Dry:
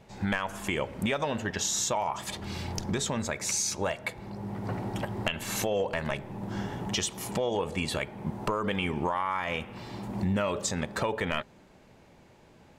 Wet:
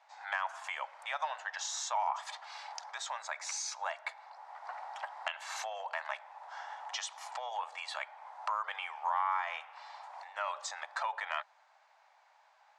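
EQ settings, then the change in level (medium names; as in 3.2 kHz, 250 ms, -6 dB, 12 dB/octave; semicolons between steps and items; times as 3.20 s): steep high-pass 720 Hz 48 dB/octave; distance through air 120 m; peaking EQ 2.8 kHz -7 dB 0.93 oct; 0.0 dB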